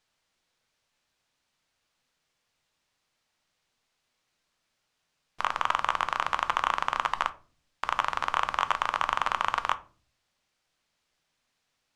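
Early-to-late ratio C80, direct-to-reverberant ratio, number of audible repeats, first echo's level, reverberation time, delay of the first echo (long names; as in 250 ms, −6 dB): 22.5 dB, 11.0 dB, no echo audible, no echo audible, 0.40 s, no echo audible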